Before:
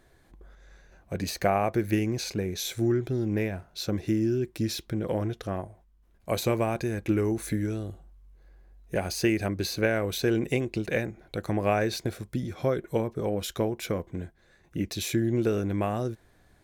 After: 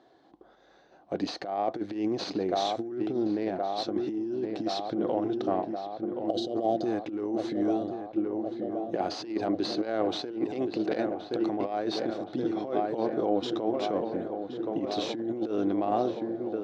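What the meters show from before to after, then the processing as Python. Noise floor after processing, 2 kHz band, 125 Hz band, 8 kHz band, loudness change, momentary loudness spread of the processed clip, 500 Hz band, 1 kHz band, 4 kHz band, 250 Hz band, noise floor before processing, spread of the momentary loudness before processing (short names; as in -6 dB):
-59 dBFS, -10.0 dB, -14.5 dB, under -10 dB, -1.5 dB, 5 LU, -0.5 dB, +3.0 dB, -1.5 dB, 0.0 dB, -62 dBFS, 9 LU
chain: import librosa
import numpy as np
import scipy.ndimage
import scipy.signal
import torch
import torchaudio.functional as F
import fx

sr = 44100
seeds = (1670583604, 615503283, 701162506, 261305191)

y = fx.tracing_dist(x, sr, depth_ms=0.12)
y = fx.peak_eq(y, sr, hz=2000.0, db=-4.5, octaves=0.49)
y = fx.spec_box(y, sr, start_s=6.23, length_s=0.62, low_hz=790.0, high_hz=2800.0, gain_db=-22)
y = fx.echo_filtered(y, sr, ms=1072, feedback_pct=77, hz=2300.0, wet_db=-10)
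y = fx.over_compress(y, sr, threshold_db=-28.0, ratio=-0.5)
y = fx.cabinet(y, sr, low_hz=280.0, low_slope=12, high_hz=4700.0, hz=(300.0, 750.0, 1600.0, 2400.0), db=(8, 8, -5, -8))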